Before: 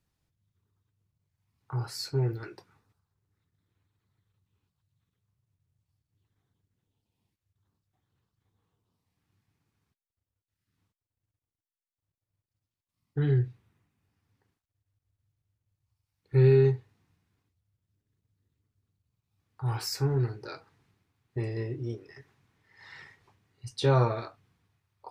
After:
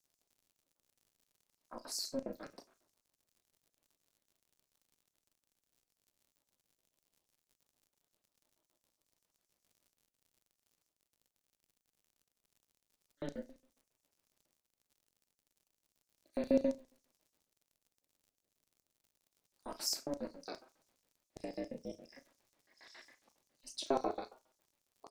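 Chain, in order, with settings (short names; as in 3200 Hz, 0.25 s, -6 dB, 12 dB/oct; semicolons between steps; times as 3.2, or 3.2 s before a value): de-hum 129.2 Hz, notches 27; LFO high-pass square 7.3 Hz 530–6100 Hz; in parallel at -1.5 dB: compressor, threshold -38 dBFS, peak gain reduction 17.5 dB; on the sum: doubler 35 ms -11.5 dB; crackle 98/s -51 dBFS; bell 1400 Hz -9.5 dB 2.7 oct; ring modulator 140 Hz; on a send at -17 dB: reverb, pre-delay 3 ms; on the sum: gain -2 dB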